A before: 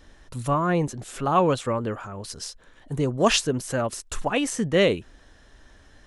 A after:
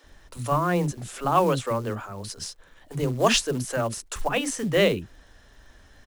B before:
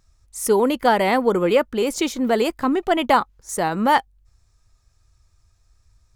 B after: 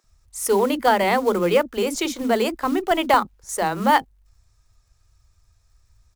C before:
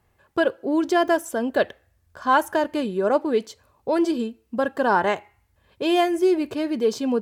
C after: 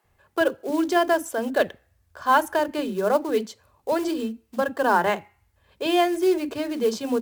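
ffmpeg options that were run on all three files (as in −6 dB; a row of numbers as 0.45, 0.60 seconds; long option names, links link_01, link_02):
-filter_complex "[0:a]acrusher=bits=6:mode=log:mix=0:aa=0.000001,acrossover=split=300[link_01][link_02];[link_01]adelay=40[link_03];[link_03][link_02]amix=inputs=2:normalize=0"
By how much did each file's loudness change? −0.5, −1.0, −1.0 LU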